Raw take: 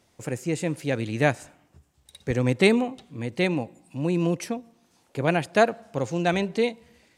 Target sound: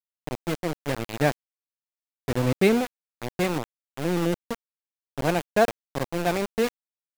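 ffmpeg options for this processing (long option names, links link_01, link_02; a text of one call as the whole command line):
ffmpeg -i in.wav -af "highshelf=frequency=2200:gain=-9,aeval=exprs='val(0)*gte(abs(val(0)),0.0631)':channel_layout=same" out.wav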